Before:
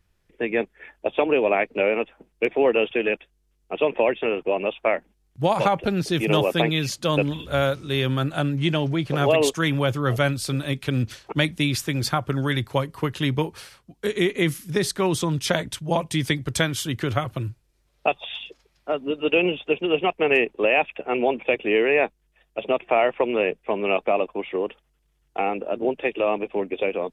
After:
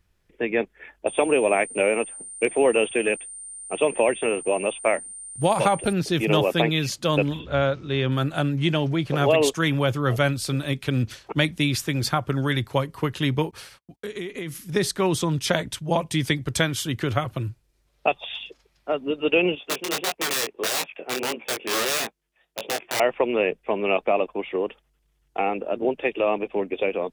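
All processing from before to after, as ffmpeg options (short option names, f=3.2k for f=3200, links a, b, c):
-filter_complex "[0:a]asettb=1/sr,asplit=3[a][b][c];[a]atrim=end=1.074[d];[b]atrim=start=1.07:end=5.93,asetpts=PTS-STARTPTS,afade=t=in:d=0.004:c=qsin,afade=t=out:st=4.856:d=0.004:c=qsin,aeval=exprs='val(0)+0.0112*sin(2*PI*8900*n/s)':c=same,highshelf=f=10k:g=7[e];[c]atrim=start=5.926[f];[d][e]acrossfade=d=0.004:c1=hsin:c2=qsin[g];[g][f]acrossfade=d=0.004:c1=qsin:c2=hsin,asettb=1/sr,asplit=3[h][i][j];[h]atrim=end=7.394[k];[i]atrim=start=7.39:end=8.12,asetpts=PTS-STARTPTS,afade=t=in:d=0.004:c=qsin,afade=t=out:st=0.726:d=0.004:c=qsin,lowpass=f=7k:w=0.5412,lowpass=f=7k:w=1.3066,highshelf=f=5.1k:g=-11.5[l];[j]atrim=start=8.116[m];[k][l]acrossfade=d=0.004:c1=hsin:c2=qsin[n];[n][m]acrossfade=d=0.004:c1=qsin:c2=hsin,asettb=1/sr,asplit=3[o][p][q];[o]atrim=end=13.514[r];[p]atrim=start=13.51:end=14.73,asetpts=PTS-STARTPTS,afade=t=in:d=0.004:c=qsin,afade=t=out:st=1.216:d=0.004:c=qsin,agate=range=-35dB:threshold=-54dB:ratio=16:release=100:detection=peak,acompressor=threshold=-29dB:ratio=5:attack=3.2:release=140:knee=1:detection=peak[s];[q]atrim=start=14.726[t];[r][s]acrossfade=d=0.004:c1=hsin:c2=qsin[u];[u][t]acrossfade=d=0.004:c1=qsin:c2=hsin,asettb=1/sr,asplit=3[v][w][x];[v]atrim=end=19.554[y];[w]atrim=start=19.55:end=23,asetpts=PTS-STARTPTS,afade=t=in:d=0.004:c=qsin,afade=t=out:st=3.446:d=0.004:c=qsin,aeval=exprs='(mod(5.96*val(0)+1,2)-1)/5.96':c=same,highpass=f=260:p=1,flanger=delay=17.5:depth=6.3:speed=1.6[z];[x]atrim=start=22.996[aa];[y][z]acrossfade=d=0.004:c1=hsin:c2=qsin[ab];[ab][aa]acrossfade=d=0.004:c1=qsin:c2=hsin"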